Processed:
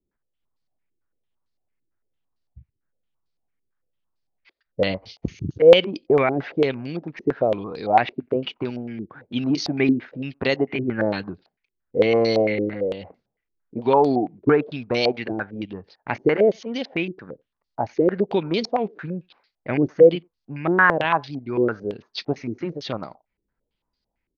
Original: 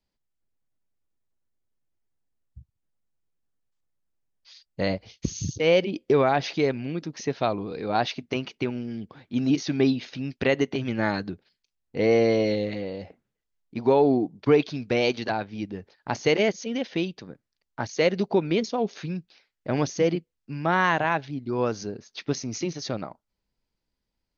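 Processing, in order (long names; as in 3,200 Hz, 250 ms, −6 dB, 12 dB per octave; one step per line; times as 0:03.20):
far-end echo of a speakerphone 90 ms, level −29 dB
low-pass on a step sequencer 8.9 Hz 360–4,600 Hz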